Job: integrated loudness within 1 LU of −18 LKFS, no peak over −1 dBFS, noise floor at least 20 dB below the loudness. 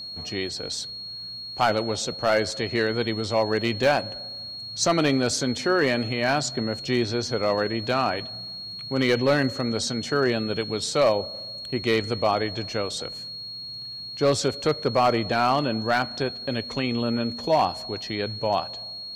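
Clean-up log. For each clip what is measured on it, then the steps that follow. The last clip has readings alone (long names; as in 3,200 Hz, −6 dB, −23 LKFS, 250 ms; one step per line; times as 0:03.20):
share of clipped samples 0.4%; peaks flattened at −13.0 dBFS; interfering tone 4,300 Hz; level of the tone −34 dBFS; integrated loudness −25.0 LKFS; sample peak −13.0 dBFS; target loudness −18.0 LKFS
→ clipped peaks rebuilt −13 dBFS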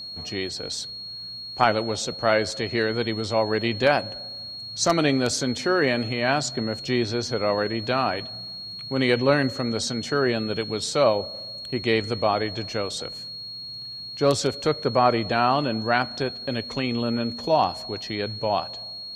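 share of clipped samples 0.0%; interfering tone 4,300 Hz; level of the tone −34 dBFS
→ notch filter 4,300 Hz, Q 30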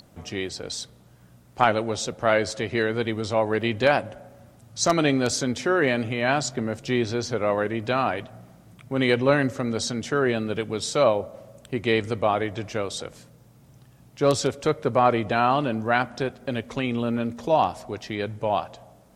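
interfering tone none found; integrated loudness −24.5 LKFS; sample peak −4.0 dBFS; target loudness −18.0 LKFS
→ level +6.5 dB
brickwall limiter −1 dBFS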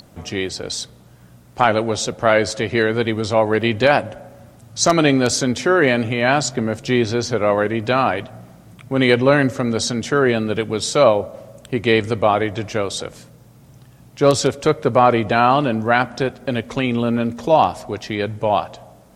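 integrated loudness −18.5 LKFS; sample peak −1.0 dBFS; background noise floor −47 dBFS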